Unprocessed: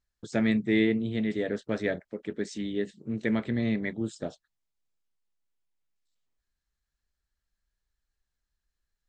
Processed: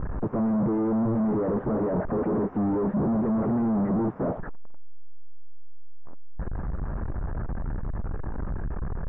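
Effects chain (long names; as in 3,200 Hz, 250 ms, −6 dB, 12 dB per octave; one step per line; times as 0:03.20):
sign of each sample alone
inverse Chebyshev low-pass filter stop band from 3,900 Hz, stop band 60 dB
parametric band 200 Hz +6 dB 3 octaves
level +4 dB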